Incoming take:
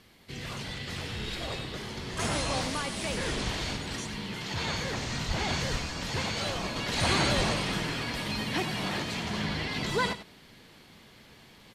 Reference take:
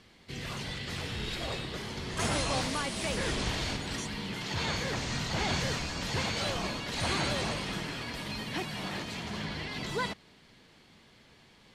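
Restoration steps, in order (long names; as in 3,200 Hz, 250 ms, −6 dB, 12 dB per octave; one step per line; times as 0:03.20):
0:05.27–0:05.39: high-pass filter 140 Hz 24 dB per octave
0:05.71–0:05.83: high-pass filter 140 Hz 24 dB per octave
0:07.36–0:07.48: high-pass filter 140 Hz 24 dB per octave
downward expander −46 dBFS, range −21 dB
echo removal 95 ms −12 dB
level 0 dB, from 0:06.76 −4.5 dB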